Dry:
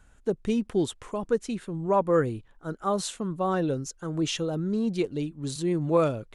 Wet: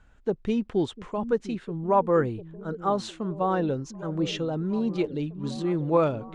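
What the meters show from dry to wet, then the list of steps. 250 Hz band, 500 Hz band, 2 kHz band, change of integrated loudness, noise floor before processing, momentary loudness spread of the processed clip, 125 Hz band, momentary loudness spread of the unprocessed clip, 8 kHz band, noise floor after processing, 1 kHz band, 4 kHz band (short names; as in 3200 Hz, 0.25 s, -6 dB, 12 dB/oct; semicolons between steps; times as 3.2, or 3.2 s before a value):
+0.5 dB, +0.5 dB, 0.0 dB, +0.5 dB, -58 dBFS, 9 LU, 0.0 dB, 8 LU, -9.5 dB, -55 dBFS, +2.5 dB, -2.0 dB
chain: LPF 4300 Hz 12 dB/oct; delay with a stepping band-pass 0.7 s, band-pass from 210 Hz, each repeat 0.7 oct, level -10 dB; dynamic EQ 860 Hz, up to +5 dB, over -42 dBFS, Q 3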